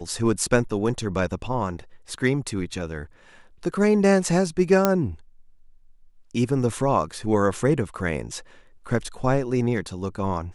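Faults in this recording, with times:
0:04.85: click −4 dBFS

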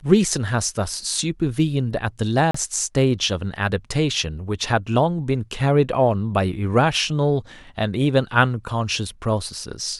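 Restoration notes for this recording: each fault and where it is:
0:02.51–0:02.54: drop-out 34 ms

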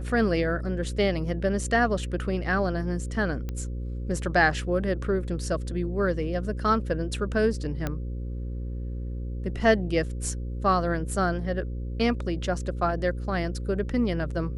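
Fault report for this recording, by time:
mains buzz 60 Hz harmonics 9 −32 dBFS
0:03.49: click −20 dBFS
0:07.87: click −15 dBFS

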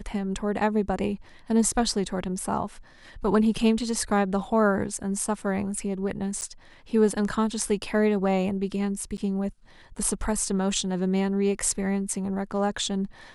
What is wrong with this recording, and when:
0:06.41–0:06.42: drop-out 8.9 ms
0:09.17–0:09.18: drop-out 9.2 ms

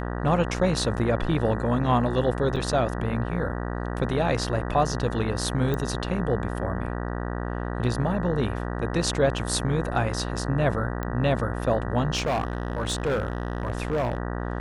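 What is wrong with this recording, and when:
mains buzz 60 Hz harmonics 32 −30 dBFS
0:02.56–0:02.57: drop-out 6 ms
0:05.74: click −15 dBFS
0:11.03: click −17 dBFS
0:12.15–0:14.18: clipping −21 dBFS

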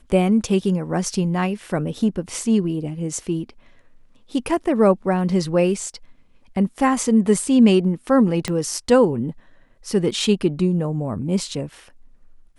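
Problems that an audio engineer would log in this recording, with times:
0:08.48: click −11 dBFS

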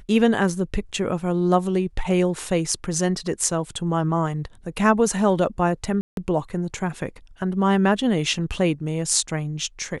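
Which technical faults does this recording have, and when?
0:06.01–0:06.17: drop-out 162 ms

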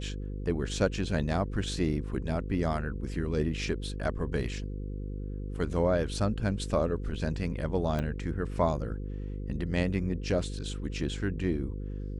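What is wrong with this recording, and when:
mains buzz 50 Hz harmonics 10 −36 dBFS
0:07.99: click −20 dBFS

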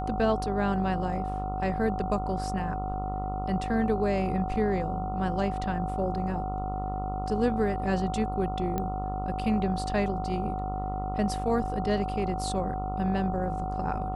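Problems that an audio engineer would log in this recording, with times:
mains buzz 50 Hz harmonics 28 −34 dBFS
whistle 750 Hz −33 dBFS
0:08.78: click −17 dBFS

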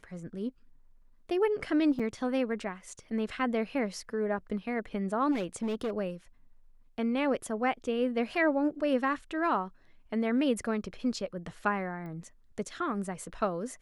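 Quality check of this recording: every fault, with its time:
0:01.99–0:02.00: drop-out 6.2 ms
0:05.31–0:05.91: clipping −28 dBFS
0:12.06: click −34 dBFS

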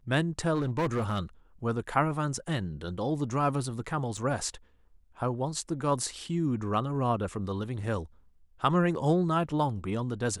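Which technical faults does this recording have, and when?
0:00.54–0:01.19: clipping −24.5 dBFS
0:04.17: drop-out 4.8 ms

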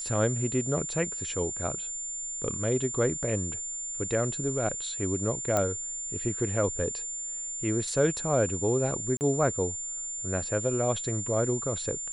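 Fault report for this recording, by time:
whistle 7,200 Hz −33 dBFS
0:05.57: click −12 dBFS
0:09.17–0:09.21: drop-out 39 ms

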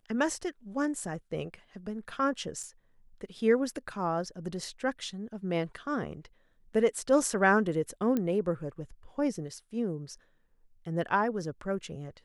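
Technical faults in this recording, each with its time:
0:02.63–0:02.64: drop-out 5.1 ms
0:08.17: click −18 dBFS

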